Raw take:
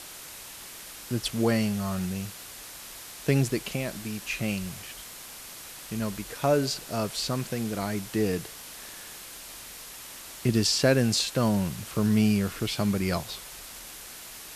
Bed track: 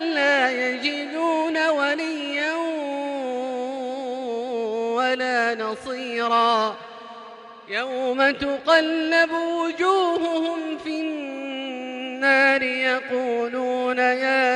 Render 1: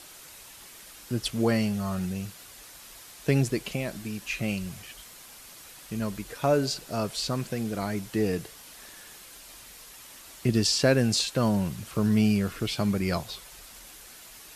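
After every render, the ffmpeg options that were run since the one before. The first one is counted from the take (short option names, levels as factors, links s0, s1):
-af "afftdn=nr=6:nf=-44"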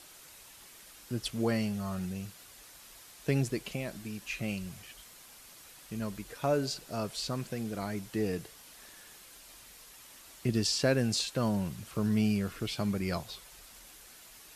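-af "volume=0.531"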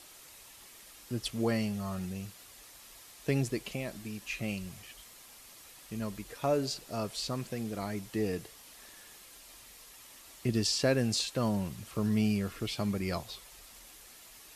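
-af "equalizer=f=160:w=4.1:g=-4,bandreject=f=1500:w=14"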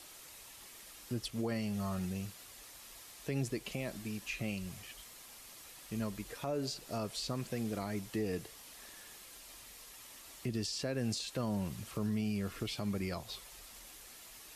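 -filter_complex "[0:a]alimiter=level_in=1.33:limit=0.0631:level=0:latency=1:release=192,volume=0.75,acrossover=split=440[s0][s1];[s1]acompressor=threshold=0.0158:ratio=6[s2];[s0][s2]amix=inputs=2:normalize=0"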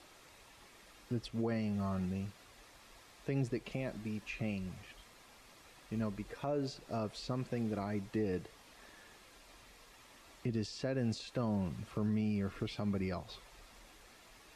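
-af "aemphasis=mode=reproduction:type=75fm,bandreject=f=3000:w=25"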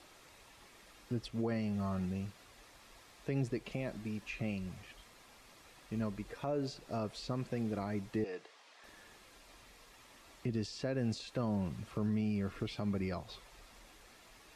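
-filter_complex "[0:a]asettb=1/sr,asplit=3[s0][s1][s2];[s0]atrim=end=8.244[s3];[s1]atrim=start=8.24:end=8.84,asetpts=PTS-STARTPTS,afade=t=in:d=0.004:c=qsin,afade=t=out:st=0.596:d=0.004:c=qsin,highpass=540,lowpass=6300[s4];[s2]atrim=start=8.836[s5];[s3][s4]acrossfade=d=0.004:c1=hsin:c2=qsin[s6];[s6][s5]acrossfade=d=0.004:c1=qsin:c2=hsin"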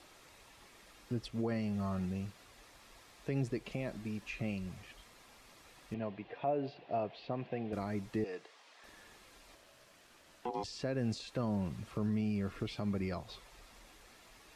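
-filter_complex "[0:a]asettb=1/sr,asplit=3[s0][s1][s2];[s0]atrim=end=5.944[s3];[s1]atrim=start=5.94:end=7.73,asetpts=PTS-STARTPTS,afade=t=in:d=0.004:c=qsin,afade=t=out:st=1.786:d=0.004:c=qsin,highpass=140,equalizer=f=220:t=q:w=4:g=-5,equalizer=f=720:t=q:w=4:g=9,equalizer=f=1300:t=q:w=4:g=-7,equalizer=f=2800:t=q:w=4:g=4,lowpass=f=3400:w=0.5412,lowpass=f=3400:w=1.3066[s4];[s2]atrim=start=7.726[s5];[s3][s4]acrossfade=d=0.004:c1=hsin:c2=qsin[s6];[s6][s5]acrossfade=d=0.004:c1=qsin:c2=hsin,asettb=1/sr,asplit=3[s7][s8][s9];[s7]atrim=end=9.554[s10];[s8]atrim=start=9.55:end=10.64,asetpts=PTS-STARTPTS,afade=t=in:d=0.004:c=qsin,afade=t=out:st=1.086:d=0.004:c=qsin,aeval=exprs='val(0)*sin(2*PI*610*n/s)':c=same[s11];[s9]atrim=start=10.636[s12];[s10][s11]acrossfade=d=0.004:c1=hsin:c2=qsin[s13];[s13][s12]acrossfade=d=0.004:c1=qsin:c2=hsin"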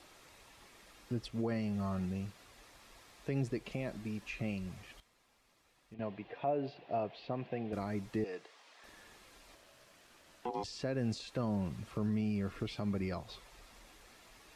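-filter_complex "[0:a]asplit=3[s0][s1][s2];[s0]atrim=end=5.002[s3];[s1]atrim=start=4.998:end=5.992,asetpts=PTS-STARTPTS,volume=0.251[s4];[s2]atrim=start=5.988[s5];[s3][s4]acrossfade=d=0.004:c1=hsin:c2=hsin[s6];[s6][s5]acrossfade=d=0.004:c1=hsin:c2=hsin"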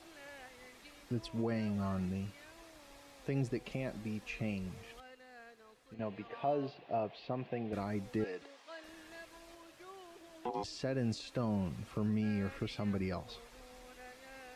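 -filter_complex "[1:a]volume=0.02[s0];[0:a][s0]amix=inputs=2:normalize=0"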